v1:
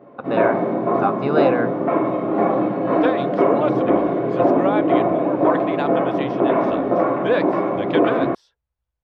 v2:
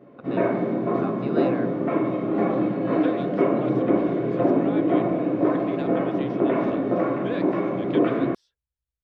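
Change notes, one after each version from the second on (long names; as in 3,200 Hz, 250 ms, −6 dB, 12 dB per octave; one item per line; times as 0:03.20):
speech −8.0 dB
master: add parametric band 850 Hz −9.5 dB 1.6 octaves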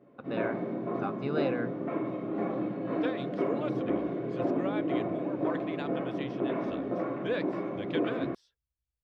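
background −9.5 dB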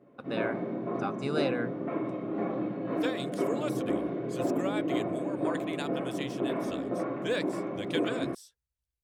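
speech: remove high-frequency loss of the air 280 metres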